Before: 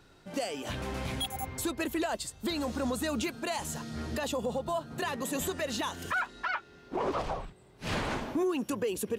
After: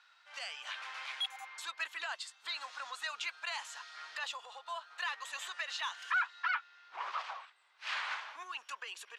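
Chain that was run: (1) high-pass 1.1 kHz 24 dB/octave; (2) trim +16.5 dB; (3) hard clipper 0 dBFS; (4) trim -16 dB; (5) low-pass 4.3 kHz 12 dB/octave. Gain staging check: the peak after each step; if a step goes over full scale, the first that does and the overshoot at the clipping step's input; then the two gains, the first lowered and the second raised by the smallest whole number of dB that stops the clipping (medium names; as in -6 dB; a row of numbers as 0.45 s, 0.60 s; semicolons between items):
-22.0 dBFS, -5.5 dBFS, -5.5 dBFS, -21.5 dBFS, -23.0 dBFS; nothing clips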